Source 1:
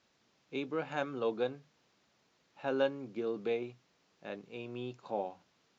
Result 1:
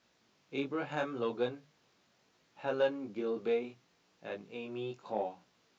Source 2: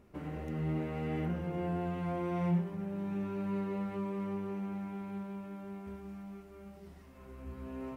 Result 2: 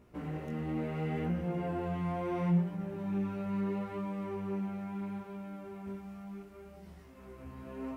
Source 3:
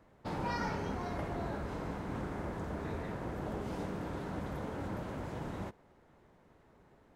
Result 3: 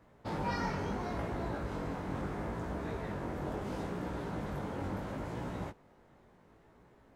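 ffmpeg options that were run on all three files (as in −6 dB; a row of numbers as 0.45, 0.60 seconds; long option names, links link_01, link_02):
-filter_complex "[0:a]flanger=delay=16.5:depth=5.4:speed=0.73,asplit=2[link_01][link_02];[link_02]asoftclip=type=tanh:threshold=-29.5dB,volume=-4dB[link_03];[link_01][link_03]amix=inputs=2:normalize=0"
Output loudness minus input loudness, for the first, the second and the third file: +0.5, +1.0, +1.0 LU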